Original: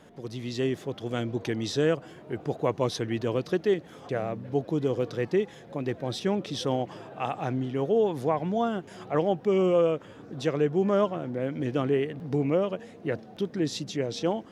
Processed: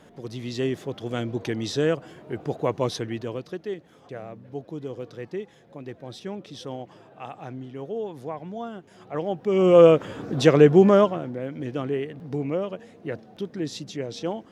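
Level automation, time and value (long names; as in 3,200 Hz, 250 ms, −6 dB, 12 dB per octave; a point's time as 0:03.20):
0:02.92 +1.5 dB
0:03.55 −7.5 dB
0:08.91 −7.5 dB
0:09.50 +0.5 dB
0:09.84 +11 dB
0:10.77 +11 dB
0:11.43 −2 dB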